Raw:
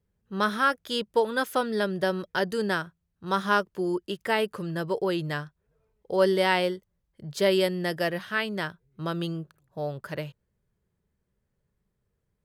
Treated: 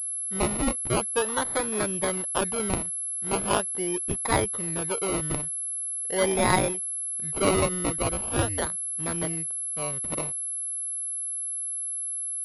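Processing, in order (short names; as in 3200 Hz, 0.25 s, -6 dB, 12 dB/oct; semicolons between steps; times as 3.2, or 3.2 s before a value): band shelf 2800 Hz +11.5 dB 1.2 oct; decimation with a swept rate 21×, swing 60% 0.42 Hz; 8.21–8.66 frequency shift -110 Hz; pulse-width modulation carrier 11000 Hz; gain -3 dB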